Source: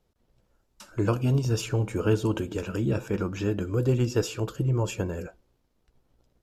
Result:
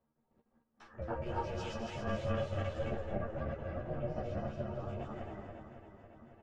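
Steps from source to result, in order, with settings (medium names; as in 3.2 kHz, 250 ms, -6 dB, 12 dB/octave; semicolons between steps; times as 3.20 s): backward echo that repeats 138 ms, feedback 71%, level 0 dB; low-pass 1.5 kHz 12 dB/octave, from 1.22 s 3.8 kHz, from 2.92 s 1.5 kHz; gate -58 dBFS, range -43 dB; bass shelf 120 Hz -11 dB; upward compressor, threshold -33 dBFS; feedback comb 350 Hz, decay 0.17 s, harmonics all, mix 80%; ring modulator 230 Hz; doubling 13 ms -2.5 dB; delay 220 ms -7.5 dB; three-phase chorus; trim +1.5 dB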